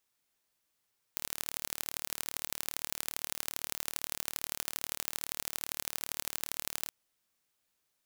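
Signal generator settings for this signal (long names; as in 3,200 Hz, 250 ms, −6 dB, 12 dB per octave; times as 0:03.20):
impulse train 37.6 per second, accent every 3, −5.5 dBFS 5.72 s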